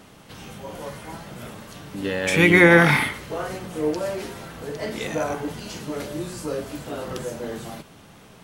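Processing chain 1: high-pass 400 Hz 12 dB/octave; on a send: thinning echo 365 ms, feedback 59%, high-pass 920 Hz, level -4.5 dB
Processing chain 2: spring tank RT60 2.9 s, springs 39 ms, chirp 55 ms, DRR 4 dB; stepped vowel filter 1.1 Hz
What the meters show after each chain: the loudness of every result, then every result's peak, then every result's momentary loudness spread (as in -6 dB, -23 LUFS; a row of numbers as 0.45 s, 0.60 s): -22.0 LUFS, -27.5 LUFS; -3.0 dBFS, -7.0 dBFS; 24 LU, 24 LU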